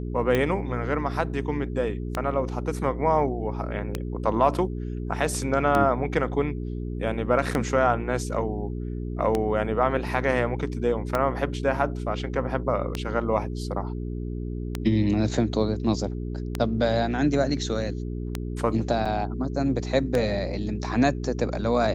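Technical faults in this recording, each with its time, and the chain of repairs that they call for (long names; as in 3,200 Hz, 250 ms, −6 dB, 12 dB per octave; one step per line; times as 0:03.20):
mains hum 60 Hz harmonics 7 −31 dBFS
scratch tick 33 1/3 rpm −11 dBFS
0:19.05–0:19.06: drop-out 5.5 ms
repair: click removal
hum removal 60 Hz, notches 7
repair the gap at 0:19.05, 5.5 ms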